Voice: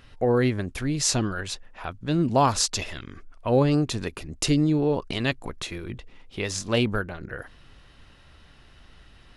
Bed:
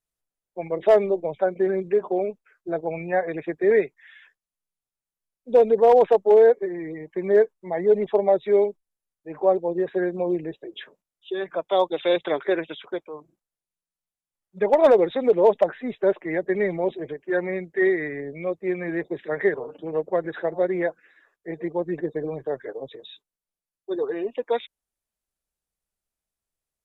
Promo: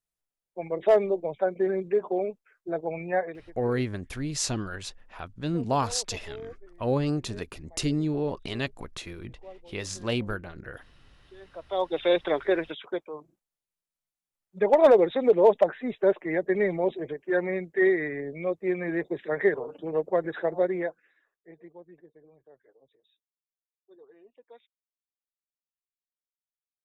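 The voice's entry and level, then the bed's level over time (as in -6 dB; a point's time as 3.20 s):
3.35 s, -5.5 dB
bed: 3.22 s -3.5 dB
3.58 s -26.5 dB
11.22 s -26.5 dB
11.96 s -1.5 dB
20.59 s -1.5 dB
22.13 s -27.5 dB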